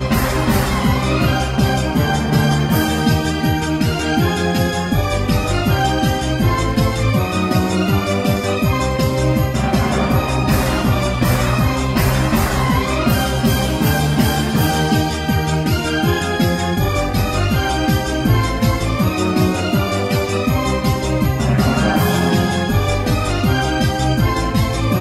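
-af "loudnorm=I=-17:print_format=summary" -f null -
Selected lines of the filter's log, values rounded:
Input Integrated:    -16.9 LUFS
Input True Peak:      -3.9 dBTP
Input LRA:             0.8 LU
Input Threshold:     -26.9 LUFS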